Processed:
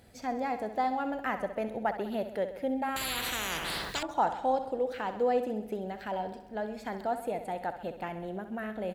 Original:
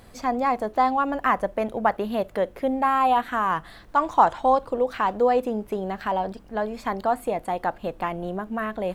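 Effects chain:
high-pass filter 49 Hz
parametric band 1,100 Hz −15 dB 0.26 octaves
on a send: repeating echo 65 ms, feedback 60%, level −11 dB
0:02.96–0:04.03: on the sum: every bin compressed towards the loudest bin 10 to 1
level −7.5 dB

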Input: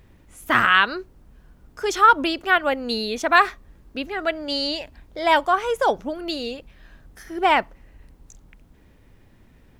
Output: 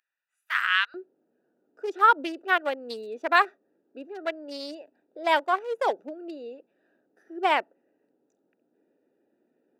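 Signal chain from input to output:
adaptive Wiener filter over 41 samples
high-pass filter 1,400 Hz 24 dB per octave, from 0:00.94 320 Hz
level −4 dB

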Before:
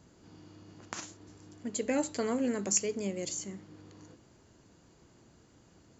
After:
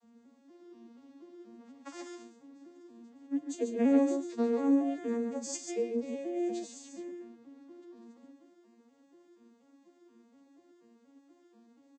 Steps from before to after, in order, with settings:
vocoder with an arpeggio as carrier minor triad, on A#3, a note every 120 ms
ambience of single reflections 51 ms −16 dB, 71 ms −6.5 dB
phase-vocoder stretch with locked phases 2×
level +2 dB

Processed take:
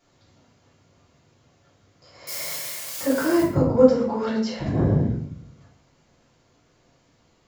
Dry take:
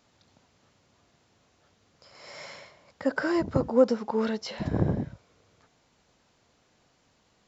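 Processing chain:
0:02.27–0:03.43: spike at every zero crossing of −25 dBFS
convolution reverb RT60 0.60 s, pre-delay 3 ms, DRR −8 dB
level −5.5 dB

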